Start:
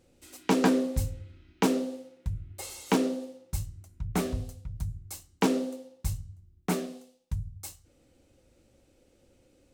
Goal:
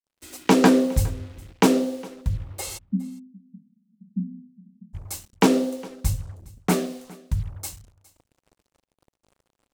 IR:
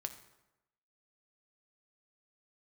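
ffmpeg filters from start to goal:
-filter_complex "[0:a]agate=range=-33dB:threshold=-60dB:ratio=3:detection=peak,acrusher=bits=8:mix=0:aa=0.5,asplit=3[a][b][c];[a]afade=t=out:st=2.77:d=0.02[d];[b]asuperpass=centerf=210:order=8:qfactor=3.5,afade=t=in:st=2.77:d=0.02,afade=t=out:st=4.93:d=0.02[e];[c]afade=t=in:st=4.93:d=0.02[f];[d][e][f]amix=inputs=3:normalize=0,aecho=1:1:411:0.075,volume=7.5dB"

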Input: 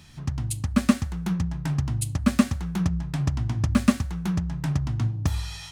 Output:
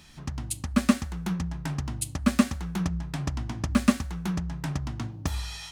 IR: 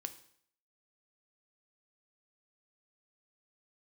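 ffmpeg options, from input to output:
-af "equalizer=f=110:t=o:w=0.89:g=-11.5"

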